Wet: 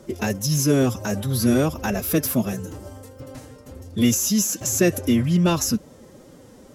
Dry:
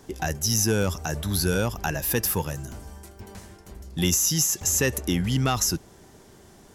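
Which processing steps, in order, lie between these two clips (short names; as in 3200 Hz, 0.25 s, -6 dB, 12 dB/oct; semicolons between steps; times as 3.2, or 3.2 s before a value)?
formant-preserving pitch shift +5 st; small resonant body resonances 220/360/550 Hz, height 7 dB, ringing for 20 ms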